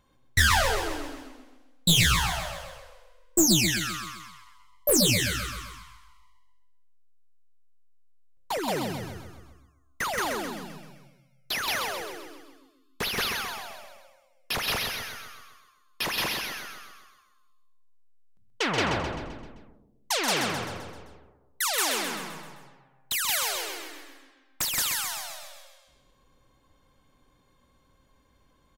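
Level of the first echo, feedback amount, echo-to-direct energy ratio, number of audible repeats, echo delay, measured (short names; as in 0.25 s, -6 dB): -6.0 dB, 51%, -4.5 dB, 5, 0.13 s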